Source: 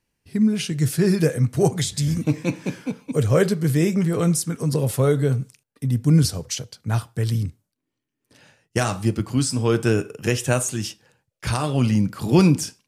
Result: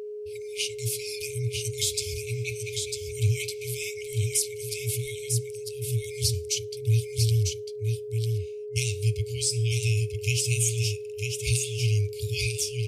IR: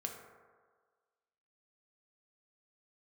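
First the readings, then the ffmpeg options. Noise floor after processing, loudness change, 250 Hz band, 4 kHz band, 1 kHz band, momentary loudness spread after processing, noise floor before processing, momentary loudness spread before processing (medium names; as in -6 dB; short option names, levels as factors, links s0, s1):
-37 dBFS, -6.0 dB, under -20 dB, +1.0 dB, under -40 dB, 7 LU, -81 dBFS, 11 LU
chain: -af "aecho=1:1:949:0.596,afftfilt=real='re*(1-between(b*sr/4096,120,2100))':imag='im*(1-between(b*sr/4096,120,2100))':win_size=4096:overlap=0.75,aeval=exprs='val(0)+0.02*sin(2*PI*420*n/s)':c=same"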